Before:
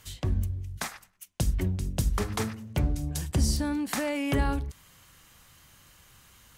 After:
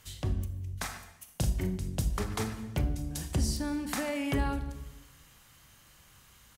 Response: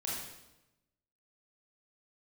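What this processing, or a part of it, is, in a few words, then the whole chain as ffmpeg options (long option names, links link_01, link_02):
compressed reverb return: -filter_complex "[0:a]asplit=2[link_01][link_02];[1:a]atrim=start_sample=2205[link_03];[link_02][link_03]afir=irnorm=-1:irlink=0,acompressor=threshold=-25dB:ratio=6,volume=-5.5dB[link_04];[link_01][link_04]amix=inputs=2:normalize=0,asplit=3[link_05][link_06][link_07];[link_05]afade=type=out:start_time=1.27:duration=0.02[link_08];[link_06]asplit=2[link_09][link_10];[link_10]adelay=38,volume=-5.5dB[link_11];[link_09][link_11]amix=inputs=2:normalize=0,afade=type=in:start_time=1.27:duration=0.02,afade=type=out:start_time=1.76:duration=0.02[link_12];[link_07]afade=type=in:start_time=1.76:duration=0.02[link_13];[link_08][link_12][link_13]amix=inputs=3:normalize=0,volume=-5.5dB"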